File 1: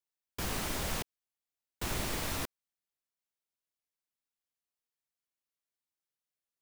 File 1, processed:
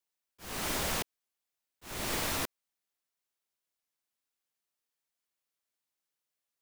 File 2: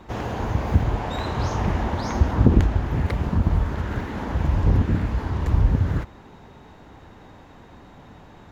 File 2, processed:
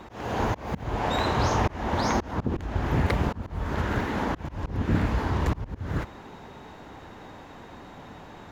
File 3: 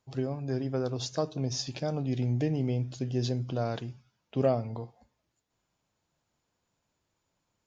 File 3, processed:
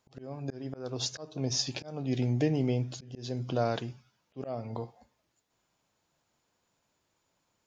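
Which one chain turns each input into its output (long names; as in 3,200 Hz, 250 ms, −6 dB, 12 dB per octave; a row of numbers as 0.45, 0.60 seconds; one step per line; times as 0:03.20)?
low-shelf EQ 170 Hz −7.5 dB
volume swells 318 ms
level +4 dB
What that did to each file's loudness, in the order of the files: +2.0, −4.5, −1.5 LU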